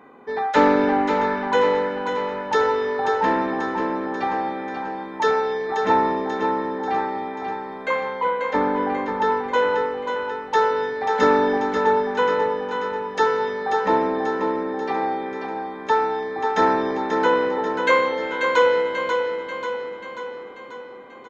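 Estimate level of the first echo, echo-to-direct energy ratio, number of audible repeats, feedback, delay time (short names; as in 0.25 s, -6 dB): -6.0 dB, -4.5 dB, 6, 56%, 0.538 s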